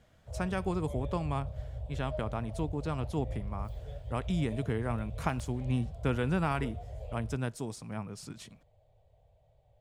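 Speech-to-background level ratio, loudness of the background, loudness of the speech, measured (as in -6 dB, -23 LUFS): 7.5 dB, -42.5 LUFS, -35.0 LUFS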